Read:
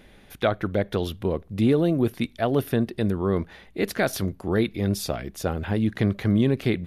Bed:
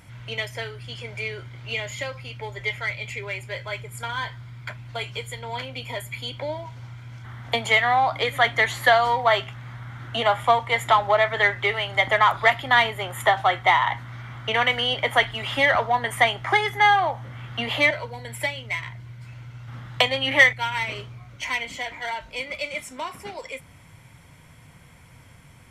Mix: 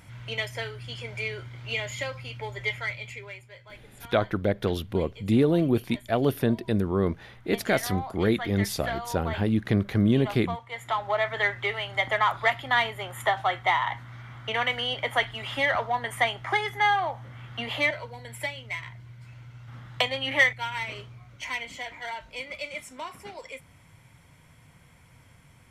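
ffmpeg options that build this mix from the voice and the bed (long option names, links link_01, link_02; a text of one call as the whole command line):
ffmpeg -i stem1.wav -i stem2.wav -filter_complex "[0:a]adelay=3700,volume=-1dB[link_01];[1:a]volume=9dB,afade=type=out:start_time=2.64:duration=0.86:silence=0.188365,afade=type=in:start_time=10.69:duration=0.59:silence=0.298538[link_02];[link_01][link_02]amix=inputs=2:normalize=0" out.wav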